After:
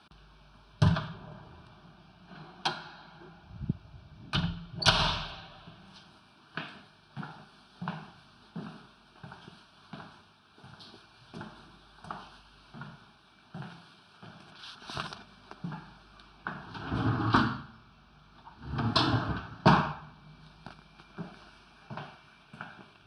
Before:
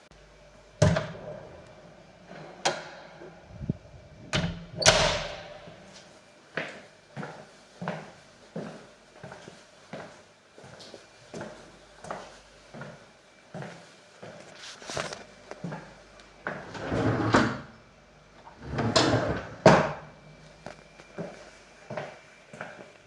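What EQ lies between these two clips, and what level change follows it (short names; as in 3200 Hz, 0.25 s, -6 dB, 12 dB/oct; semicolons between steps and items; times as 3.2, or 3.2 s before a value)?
high shelf 8400 Hz -4 dB; fixed phaser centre 2000 Hz, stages 6; 0.0 dB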